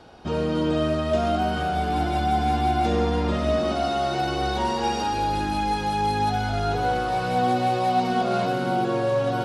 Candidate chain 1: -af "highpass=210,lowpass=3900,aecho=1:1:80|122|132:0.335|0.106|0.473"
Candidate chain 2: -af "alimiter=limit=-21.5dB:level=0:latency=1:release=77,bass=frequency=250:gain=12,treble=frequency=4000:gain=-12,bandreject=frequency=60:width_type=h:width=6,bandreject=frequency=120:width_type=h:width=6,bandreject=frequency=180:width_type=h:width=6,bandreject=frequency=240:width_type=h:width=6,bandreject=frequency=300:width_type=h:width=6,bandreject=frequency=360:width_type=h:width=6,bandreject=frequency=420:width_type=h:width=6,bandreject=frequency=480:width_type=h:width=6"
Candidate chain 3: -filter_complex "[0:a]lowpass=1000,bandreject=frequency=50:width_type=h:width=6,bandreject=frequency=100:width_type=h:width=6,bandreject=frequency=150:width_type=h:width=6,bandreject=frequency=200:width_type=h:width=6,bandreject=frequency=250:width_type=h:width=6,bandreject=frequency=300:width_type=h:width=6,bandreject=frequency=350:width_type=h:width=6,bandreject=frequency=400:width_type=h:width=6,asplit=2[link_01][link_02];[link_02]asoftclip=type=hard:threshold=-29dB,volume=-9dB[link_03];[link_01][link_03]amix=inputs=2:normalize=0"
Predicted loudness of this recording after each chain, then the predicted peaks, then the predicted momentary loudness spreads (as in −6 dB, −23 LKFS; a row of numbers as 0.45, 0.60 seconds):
−23.5, −25.5, −24.0 LKFS; −11.0, −13.0, −12.0 dBFS; 4, 4, 3 LU